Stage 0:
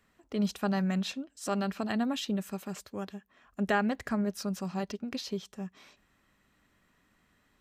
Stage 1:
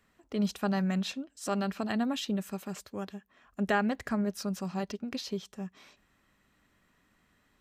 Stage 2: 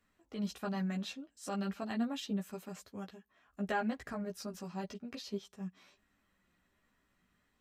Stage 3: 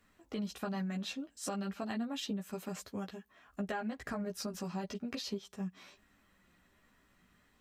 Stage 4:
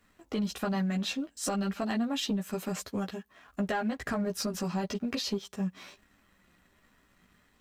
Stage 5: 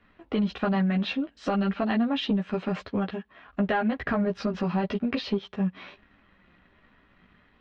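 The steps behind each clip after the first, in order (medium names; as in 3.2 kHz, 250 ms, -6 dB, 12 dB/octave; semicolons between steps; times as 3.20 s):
no audible change
chorus voices 6, 0.32 Hz, delay 14 ms, depth 4 ms; trim -4 dB
compression 6:1, threshold -42 dBFS, peak gain reduction 12.5 dB; trim +7 dB
waveshaping leveller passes 1; trim +4 dB
low-pass 3.4 kHz 24 dB/octave; trim +5.5 dB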